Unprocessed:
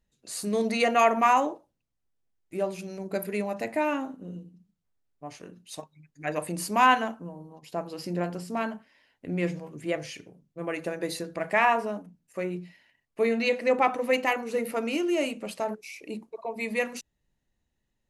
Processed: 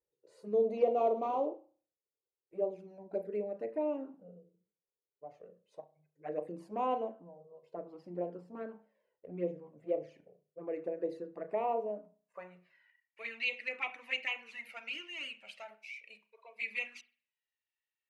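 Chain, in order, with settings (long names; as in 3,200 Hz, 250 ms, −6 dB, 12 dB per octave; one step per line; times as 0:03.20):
0:00.77–0:01.47: variable-slope delta modulation 32 kbit/s
band-pass filter sweep 480 Hz → 2,500 Hz, 0:11.75–0:13.25
flanger swept by the level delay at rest 2.2 ms, full sweep at −29 dBFS
on a send: convolution reverb, pre-delay 33 ms, DRR 13.5 dB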